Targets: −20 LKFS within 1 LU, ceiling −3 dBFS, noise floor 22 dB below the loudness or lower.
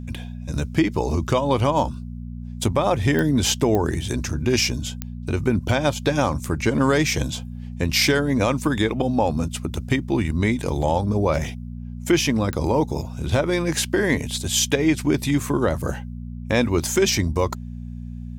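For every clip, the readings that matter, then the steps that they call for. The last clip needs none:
number of clicks 4; mains hum 60 Hz; hum harmonics up to 240 Hz; level of the hum −30 dBFS; integrated loudness −22.0 LKFS; sample peak −7.0 dBFS; target loudness −20.0 LKFS
→ click removal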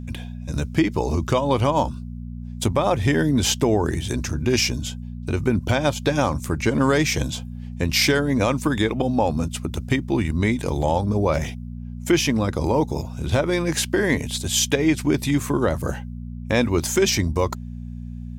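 number of clicks 0; mains hum 60 Hz; hum harmonics up to 240 Hz; level of the hum −30 dBFS
→ hum removal 60 Hz, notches 4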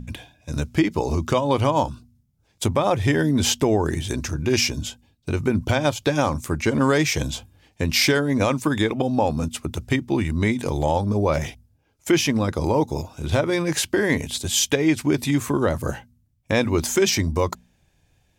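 mains hum none found; integrated loudness −22.0 LKFS; sample peak −7.0 dBFS; target loudness −20.0 LKFS
→ level +2 dB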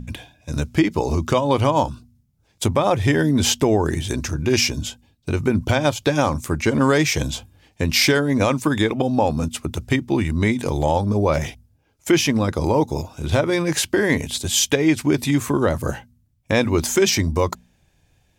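integrated loudness −20.0 LKFS; sample peak −5.0 dBFS; background noise floor −63 dBFS

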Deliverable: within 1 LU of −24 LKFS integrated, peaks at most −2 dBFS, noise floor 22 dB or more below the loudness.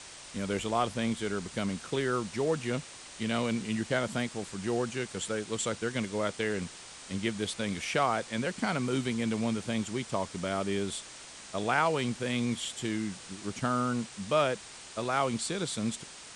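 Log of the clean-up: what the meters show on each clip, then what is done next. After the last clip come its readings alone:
background noise floor −48 dBFS; target noise floor −54 dBFS; integrated loudness −32.0 LKFS; sample peak −14.0 dBFS; target loudness −24.0 LKFS
→ noise reduction from a noise print 6 dB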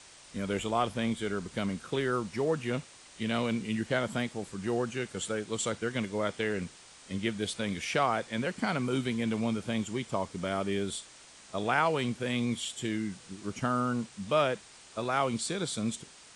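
background noise floor −54 dBFS; integrated loudness −32.0 LKFS; sample peak −14.0 dBFS; target loudness −24.0 LKFS
→ level +8 dB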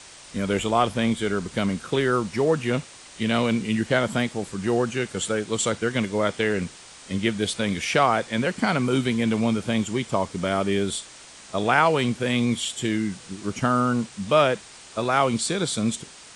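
integrated loudness −24.0 LKFS; sample peak −6.0 dBFS; background noise floor −46 dBFS

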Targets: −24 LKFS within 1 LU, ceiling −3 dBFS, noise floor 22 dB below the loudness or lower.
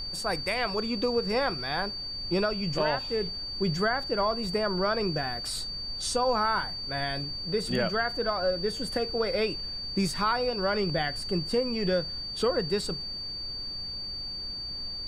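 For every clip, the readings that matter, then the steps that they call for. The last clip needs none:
interfering tone 4,600 Hz; level of the tone −34 dBFS; background noise floor −37 dBFS; target noise floor −51 dBFS; integrated loudness −29.0 LKFS; sample peak −15.0 dBFS; target loudness −24.0 LKFS
→ notch filter 4,600 Hz, Q 30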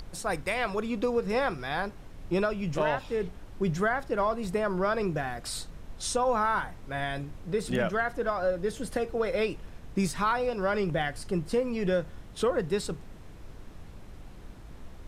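interfering tone none found; background noise floor −46 dBFS; target noise floor −52 dBFS
→ noise reduction from a noise print 6 dB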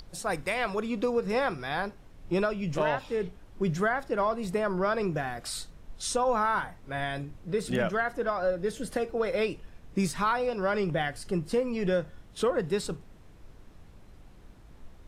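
background noise floor −52 dBFS; integrated loudness −30.0 LKFS; sample peak −16.0 dBFS; target loudness −24.0 LKFS
→ level +6 dB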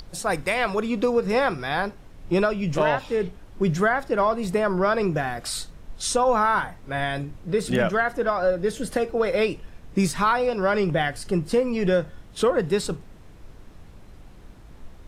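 integrated loudness −24.0 LKFS; sample peak −10.0 dBFS; background noise floor −46 dBFS

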